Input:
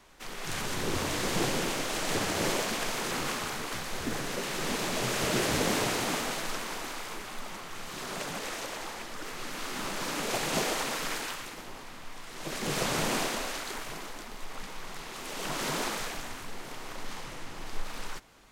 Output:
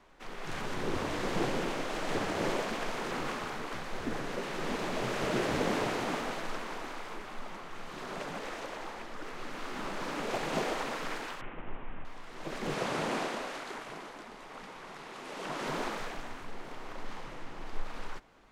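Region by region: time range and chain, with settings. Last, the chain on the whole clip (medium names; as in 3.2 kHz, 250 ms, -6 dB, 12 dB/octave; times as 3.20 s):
11.41–12.05 s: CVSD coder 16 kbps + bass shelf 140 Hz +11.5 dB
12.75–15.66 s: CVSD coder 64 kbps + high-pass 120 Hz 6 dB/octave
whole clip: low-pass 1.6 kHz 6 dB/octave; peaking EQ 82 Hz -5 dB 2.2 oct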